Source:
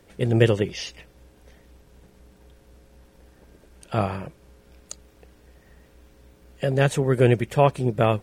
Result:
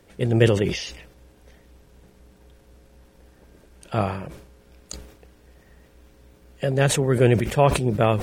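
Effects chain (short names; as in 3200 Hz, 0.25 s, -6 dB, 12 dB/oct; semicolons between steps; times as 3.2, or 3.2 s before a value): sustainer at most 75 dB/s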